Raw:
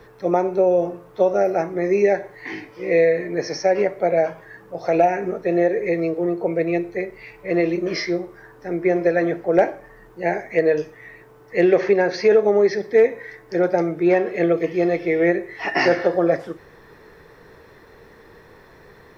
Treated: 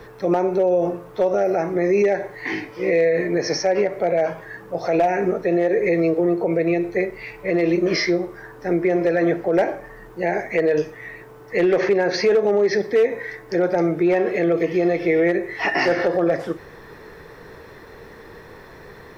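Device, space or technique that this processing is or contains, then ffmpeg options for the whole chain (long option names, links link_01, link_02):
clipper into limiter: -af "asoftclip=type=hard:threshold=-9dB,alimiter=limit=-16.5dB:level=0:latency=1:release=77,volume=5.5dB"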